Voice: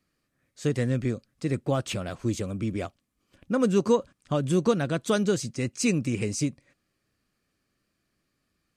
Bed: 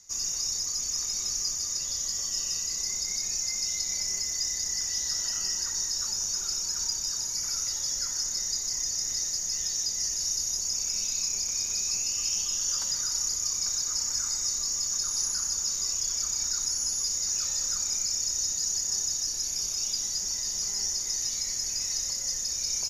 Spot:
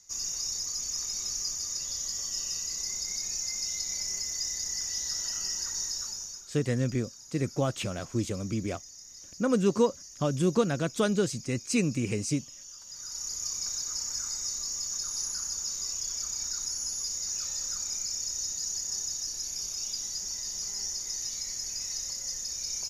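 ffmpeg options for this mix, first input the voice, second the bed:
-filter_complex "[0:a]adelay=5900,volume=-2dB[a];[1:a]volume=10.5dB,afade=t=out:st=5.88:d=0.59:silence=0.177828,afade=t=in:st=12.85:d=0.6:silence=0.211349[b];[a][b]amix=inputs=2:normalize=0"

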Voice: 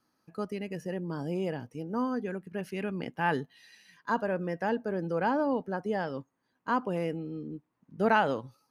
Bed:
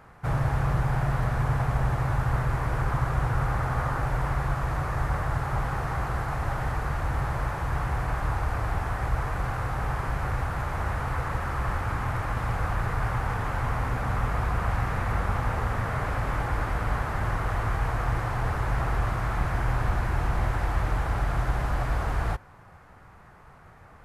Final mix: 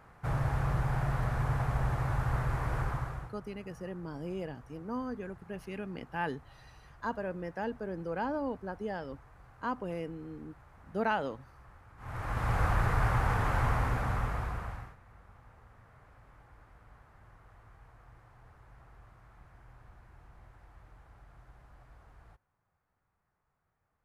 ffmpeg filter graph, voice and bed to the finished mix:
-filter_complex "[0:a]adelay=2950,volume=-6dB[a];[1:a]volume=21.5dB,afade=t=out:st=2.79:d=0.55:silence=0.0794328,afade=t=in:st=11.97:d=0.63:silence=0.0446684,afade=t=out:st=13.61:d=1.35:silence=0.0334965[b];[a][b]amix=inputs=2:normalize=0"

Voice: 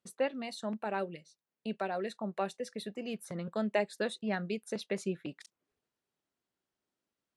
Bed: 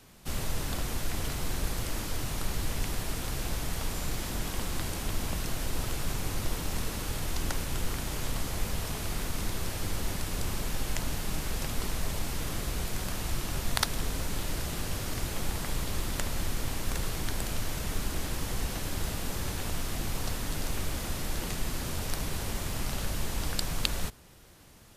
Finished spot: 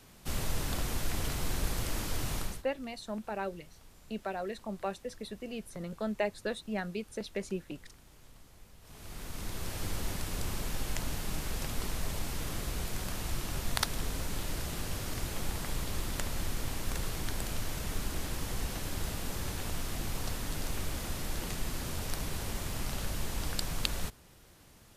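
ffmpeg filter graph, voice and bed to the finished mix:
-filter_complex "[0:a]adelay=2450,volume=-1.5dB[a];[1:a]volume=20dB,afade=t=out:st=2.36:d=0.27:silence=0.0707946,afade=t=in:st=8.81:d=1.02:silence=0.0891251[b];[a][b]amix=inputs=2:normalize=0"

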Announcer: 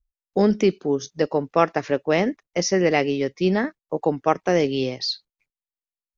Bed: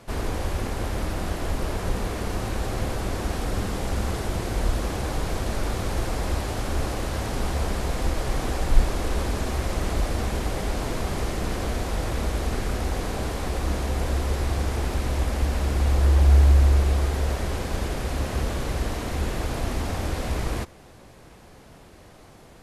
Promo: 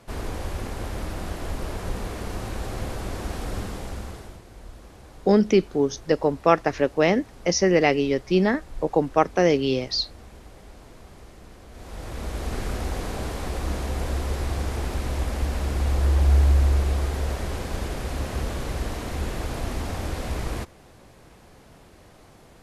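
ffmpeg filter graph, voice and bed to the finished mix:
-filter_complex "[0:a]adelay=4900,volume=0.5dB[a];[1:a]volume=13.5dB,afade=t=out:st=3.56:d=0.86:silence=0.16788,afade=t=in:st=11.7:d=0.92:silence=0.141254[b];[a][b]amix=inputs=2:normalize=0"

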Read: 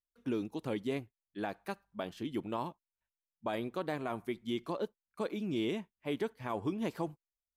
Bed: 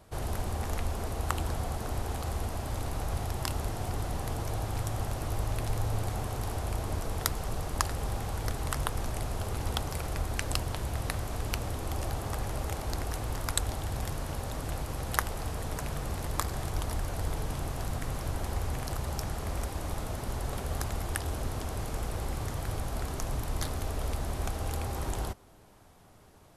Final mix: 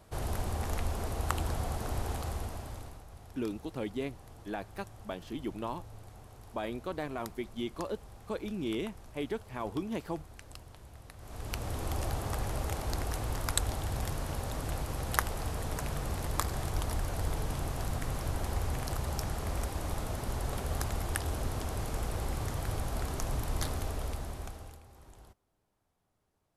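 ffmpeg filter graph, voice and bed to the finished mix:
-filter_complex "[0:a]adelay=3100,volume=-0.5dB[a];[1:a]volume=16.5dB,afade=t=out:st=2.1:d=0.93:silence=0.141254,afade=t=in:st=11.17:d=0.64:silence=0.133352,afade=t=out:st=23.71:d=1.1:silence=0.0891251[b];[a][b]amix=inputs=2:normalize=0"

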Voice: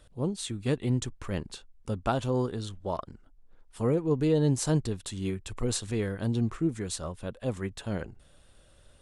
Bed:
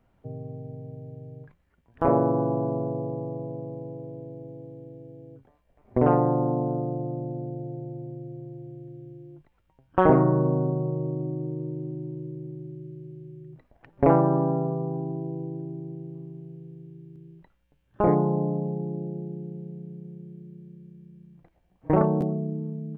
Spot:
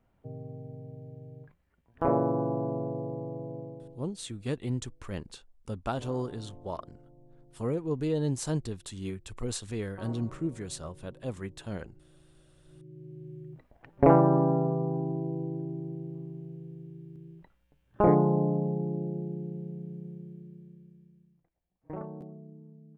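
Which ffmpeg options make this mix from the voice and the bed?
-filter_complex "[0:a]adelay=3800,volume=-4.5dB[a];[1:a]volume=21.5dB,afade=t=out:st=3.59:d=0.49:silence=0.0794328,afade=t=in:st=12.64:d=0.7:silence=0.0501187,afade=t=out:st=20.05:d=1.4:silence=0.125893[b];[a][b]amix=inputs=2:normalize=0"

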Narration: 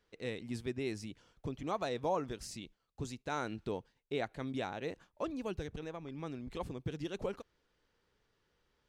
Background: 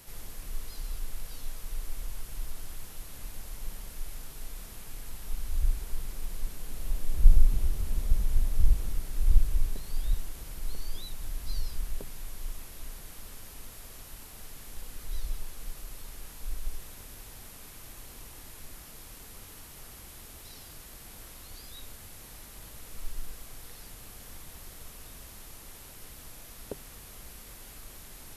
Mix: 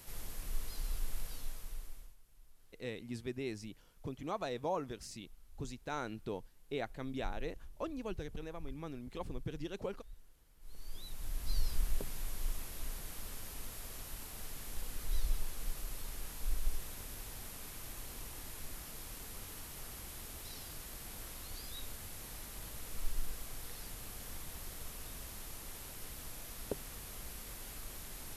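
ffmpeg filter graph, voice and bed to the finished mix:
-filter_complex "[0:a]adelay=2600,volume=-2.5dB[a];[1:a]volume=23.5dB,afade=t=out:st=1.2:d=0.96:silence=0.0668344,afade=t=in:st=10.59:d=1.16:silence=0.0530884[b];[a][b]amix=inputs=2:normalize=0"

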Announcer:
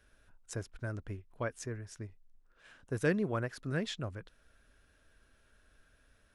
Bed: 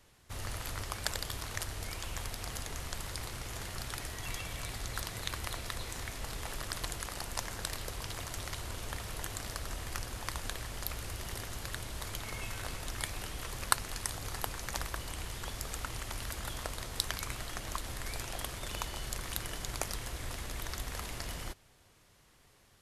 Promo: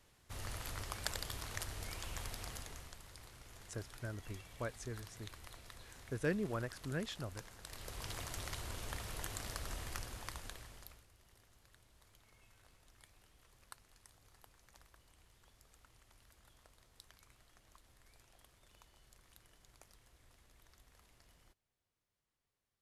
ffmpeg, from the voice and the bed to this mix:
-filter_complex "[0:a]adelay=3200,volume=-5.5dB[a];[1:a]volume=6.5dB,afade=t=out:st=2.37:d=0.61:silence=0.298538,afade=t=in:st=7.63:d=0.46:silence=0.266073,afade=t=out:st=9.78:d=1.28:silence=0.0749894[b];[a][b]amix=inputs=2:normalize=0"

